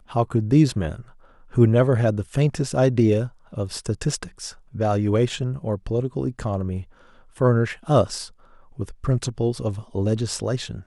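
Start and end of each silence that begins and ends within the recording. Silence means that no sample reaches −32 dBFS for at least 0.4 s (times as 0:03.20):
0:01.01–0:01.53
0:06.83–0:07.38
0:08.27–0:08.79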